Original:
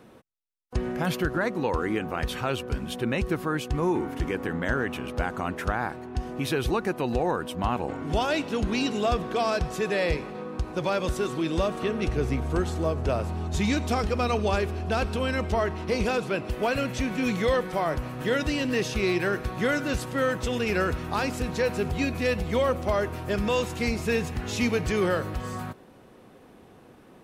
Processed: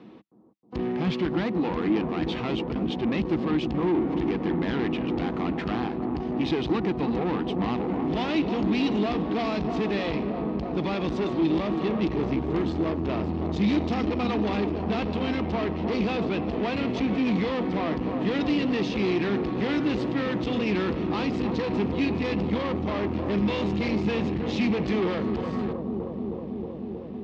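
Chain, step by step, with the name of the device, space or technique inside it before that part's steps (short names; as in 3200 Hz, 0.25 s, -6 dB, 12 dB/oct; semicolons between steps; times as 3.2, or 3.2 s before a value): analogue delay pedal into a guitar amplifier (analogue delay 0.315 s, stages 2048, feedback 83%, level -9.5 dB; tube stage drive 28 dB, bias 0.6; speaker cabinet 84–4400 Hz, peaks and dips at 100 Hz -7 dB, 200 Hz +7 dB, 310 Hz +8 dB, 570 Hz -6 dB, 1500 Hz -8 dB); gain +4.5 dB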